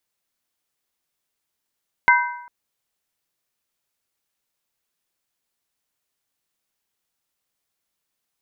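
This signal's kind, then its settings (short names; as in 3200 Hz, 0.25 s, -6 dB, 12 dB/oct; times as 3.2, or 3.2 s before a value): skin hit length 0.40 s, lowest mode 970 Hz, modes 3, decay 0.79 s, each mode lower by 0.5 dB, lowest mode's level -12 dB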